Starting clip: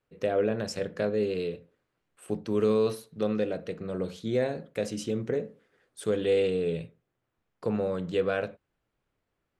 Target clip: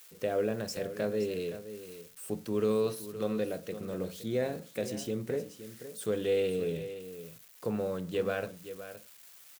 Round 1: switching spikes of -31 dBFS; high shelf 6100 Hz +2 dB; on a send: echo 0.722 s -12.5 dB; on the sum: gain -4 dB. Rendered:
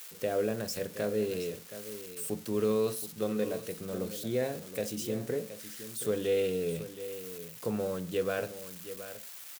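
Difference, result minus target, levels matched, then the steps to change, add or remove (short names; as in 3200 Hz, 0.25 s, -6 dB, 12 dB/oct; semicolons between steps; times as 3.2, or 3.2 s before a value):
echo 0.203 s late; switching spikes: distortion +8 dB
change: switching spikes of -39 dBFS; change: echo 0.519 s -12.5 dB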